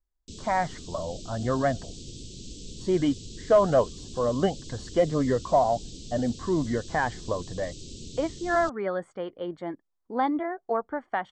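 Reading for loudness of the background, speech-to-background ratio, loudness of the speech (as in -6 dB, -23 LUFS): -42.5 LUFS, 14.5 dB, -28.0 LUFS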